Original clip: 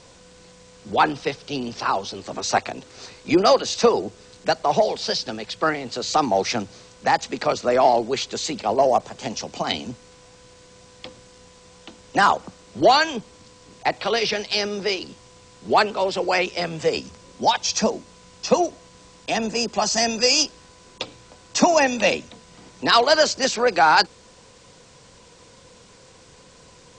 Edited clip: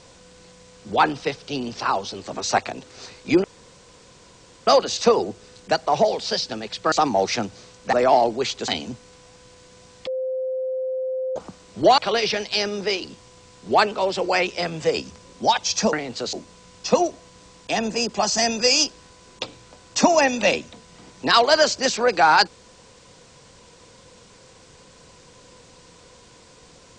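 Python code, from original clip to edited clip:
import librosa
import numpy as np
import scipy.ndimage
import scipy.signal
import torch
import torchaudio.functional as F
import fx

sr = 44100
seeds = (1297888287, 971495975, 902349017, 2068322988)

y = fx.edit(x, sr, fx.insert_room_tone(at_s=3.44, length_s=1.23),
    fx.move(start_s=5.69, length_s=0.4, to_s=17.92),
    fx.cut(start_s=7.1, length_s=0.55),
    fx.cut(start_s=8.4, length_s=1.27),
    fx.bleep(start_s=11.06, length_s=1.29, hz=519.0, db=-23.0),
    fx.cut(start_s=12.97, length_s=1.0), tone=tone)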